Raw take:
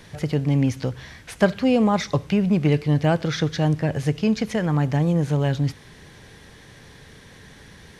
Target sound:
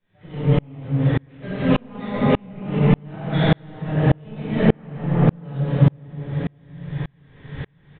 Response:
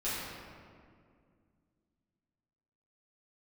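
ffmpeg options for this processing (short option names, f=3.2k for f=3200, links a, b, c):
-filter_complex "[0:a]aresample=8000,asoftclip=type=tanh:threshold=-19.5dB,aresample=44100[a];[1:a]atrim=start_sample=2205,asetrate=22491,aresample=44100[b];[a][b]afir=irnorm=-1:irlink=0,aeval=exprs='val(0)*pow(10,-38*if(lt(mod(-1.7*n/s,1),2*abs(-1.7)/1000),1-mod(-1.7*n/s,1)/(2*abs(-1.7)/1000),(mod(-1.7*n/s,1)-2*abs(-1.7)/1000)/(1-2*abs(-1.7)/1000))/20)':c=same,volume=2dB"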